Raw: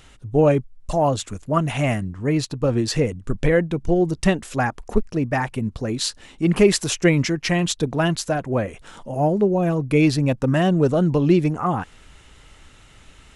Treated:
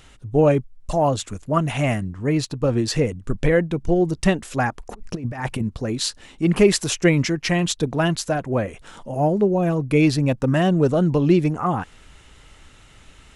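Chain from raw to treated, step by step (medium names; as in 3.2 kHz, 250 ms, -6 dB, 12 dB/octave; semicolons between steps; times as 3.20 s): 4.94–5.62 s: compressor with a negative ratio -26 dBFS, ratio -0.5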